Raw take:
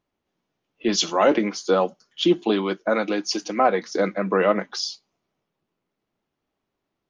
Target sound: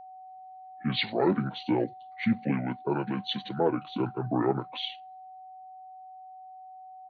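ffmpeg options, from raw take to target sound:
-af "asetrate=28595,aresample=44100,atempo=1.54221,aeval=exprs='val(0)+0.0141*sin(2*PI*750*n/s)':c=same,volume=-7dB"

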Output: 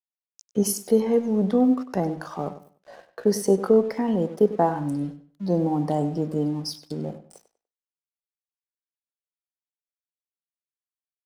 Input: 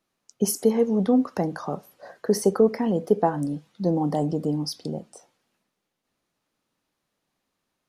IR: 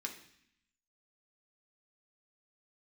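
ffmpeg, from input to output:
-filter_complex "[0:a]atempo=0.7,aeval=exprs='sgn(val(0))*max(abs(val(0))-0.00316,0)':c=same,asplit=2[a][b];[b]adelay=98,lowpass=f=4.4k:p=1,volume=-13dB,asplit=2[c][d];[d]adelay=98,lowpass=f=4.4k:p=1,volume=0.26,asplit=2[e][f];[f]adelay=98,lowpass=f=4.4k:p=1,volume=0.26[g];[a][c][e][g]amix=inputs=4:normalize=0"

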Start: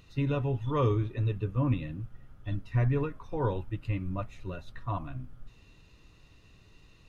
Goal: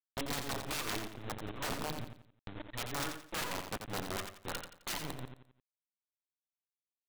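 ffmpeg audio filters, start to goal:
-af "bandreject=f=60:t=h:w=6,bandreject=f=120:t=h:w=6,bandreject=f=180:t=h:w=6,bandreject=f=240:t=h:w=6,bandreject=f=300:t=h:w=6,bandreject=f=360:t=h:w=6,bandreject=f=420:t=h:w=6,bandreject=f=480:t=h:w=6,bandreject=f=540:t=h:w=6,bandreject=f=600:t=h:w=6,afftfilt=real='re*gte(hypot(re,im),0.0501)':imag='im*gte(hypot(re,im),0.0501)':win_size=1024:overlap=0.75,acompressor=threshold=-40dB:ratio=2.5,alimiter=level_in=12.5dB:limit=-24dB:level=0:latency=1:release=19,volume=-12.5dB,highpass=200,equalizer=f=300:t=q:w=4:g=5,equalizer=f=460:t=q:w=4:g=-7,equalizer=f=1k:t=q:w=4:g=4,equalizer=f=1.5k:t=q:w=4:g=6,lowpass=f=2.5k:w=0.5412,lowpass=f=2.5k:w=1.3066,crystalizer=i=7:c=0,aresample=8000,acrusher=bits=6:dc=4:mix=0:aa=0.000001,aresample=44100,tremolo=f=5.3:d=0.7,aeval=exprs='(mod(150*val(0)+1,2)-1)/150':c=same,aecho=1:1:87|174|261|348:0.447|0.13|0.0376|0.0109,acompressor=mode=upward:threshold=-56dB:ratio=2.5,volume=14.5dB"

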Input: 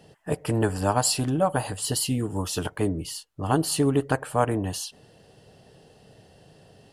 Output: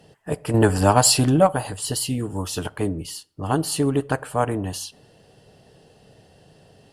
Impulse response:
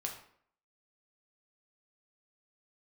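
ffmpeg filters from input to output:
-filter_complex "[0:a]asettb=1/sr,asplit=3[a][b][c];[a]atrim=end=0.544[d];[b]atrim=start=0.54:end=1.47,asetpts=PTS-STARTPTS,afade=t=in:d=0.004:c=qsin,afade=t=out:st=0.926:d=0.004:c=qsin,acontrast=76[e];[c]atrim=start=1.466[f];[d][e]acrossfade=d=0.004:c1=hsin:c2=qsin[g];[g][f]acrossfade=d=0.004:c1=qsin:c2=hsin,asplit=2[h][i];[1:a]atrim=start_sample=2205[j];[i][j]afir=irnorm=-1:irlink=0,volume=-18dB[k];[h][k]amix=inputs=2:normalize=0" -ar 48000 -c:a libopus -b:a 64k

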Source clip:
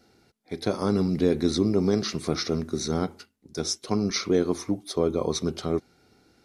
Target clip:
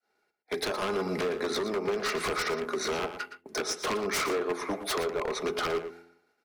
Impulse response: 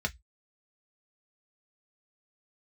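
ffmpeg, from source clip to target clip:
-filter_complex "[0:a]adynamicequalizer=threshold=0.0158:dfrequency=290:dqfactor=2.1:tfrequency=290:tqfactor=2.1:attack=5:release=100:ratio=0.375:range=2:mode=cutabove:tftype=bell,agate=range=-33dB:threshold=-47dB:ratio=3:detection=peak,aecho=1:1:4.8:0.35,acrossover=split=210|3100[a][b][c];[b]dynaudnorm=f=560:g=5:m=9dB[d];[a][d][c]amix=inputs=3:normalize=0,acrossover=split=380 2100:gain=0.112 1 0.0708[e][f][g];[e][f][g]amix=inputs=3:normalize=0,bandreject=f=85.13:t=h:w=4,bandreject=f=170.26:t=h:w=4,bandreject=f=255.39:t=h:w=4,bandreject=f=340.52:t=h:w=4,bandreject=f=425.65:t=h:w=4,bandreject=f=510.78:t=h:w=4,acompressor=threshold=-34dB:ratio=20,crystalizer=i=8:c=0,aeval=exprs='0.0251*(abs(mod(val(0)/0.0251+3,4)-2)-1)':c=same,asplit=2[h][i];[i]adelay=116.6,volume=-10dB,highshelf=f=4k:g=-2.62[j];[h][j]amix=inputs=2:normalize=0,volume=8dB"

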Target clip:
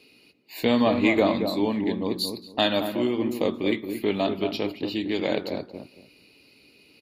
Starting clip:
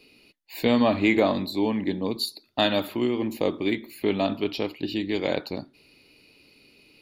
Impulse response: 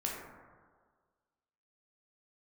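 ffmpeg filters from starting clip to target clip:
-filter_complex "[0:a]lowshelf=f=76:g=-6.5,asplit=2[a][b];[b]adelay=227,lowpass=f=830:p=1,volume=-5.5dB,asplit=2[c][d];[d]adelay=227,lowpass=f=830:p=1,volume=0.24,asplit=2[e][f];[f]adelay=227,lowpass=f=830:p=1,volume=0.24[g];[c][e][g]amix=inputs=3:normalize=0[h];[a][h]amix=inputs=2:normalize=0" -ar 44100 -c:a libvorbis -b:a 48k

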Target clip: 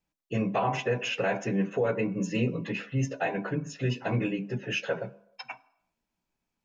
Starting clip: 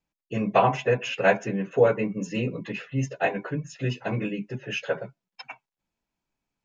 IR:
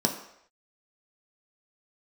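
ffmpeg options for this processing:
-filter_complex "[0:a]alimiter=limit=-18.5dB:level=0:latency=1:release=76,asplit=2[a][b];[1:a]atrim=start_sample=2205,adelay=13[c];[b][c]afir=irnorm=-1:irlink=0,volume=-22dB[d];[a][d]amix=inputs=2:normalize=0"

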